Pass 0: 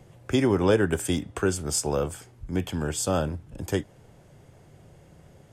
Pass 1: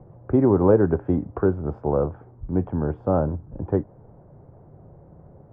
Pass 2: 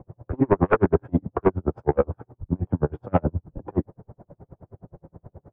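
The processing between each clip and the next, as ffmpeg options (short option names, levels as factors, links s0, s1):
-af "lowpass=f=1100:w=0.5412,lowpass=f=1100:w=1.3066,volume=1.68"
-af "flanger=delay=9.9:depth=1.7:regen=-51:speed=1.9:shape=sinusoidal,aeval=exprs='0.376*sin(PI/2*2.51*val(0)/0.376)':c=same,aeval=exprs='val(0)*pow(10,-40*(0.5-0.5*cos(2*PI*9.5*n/s))/20)':c=same"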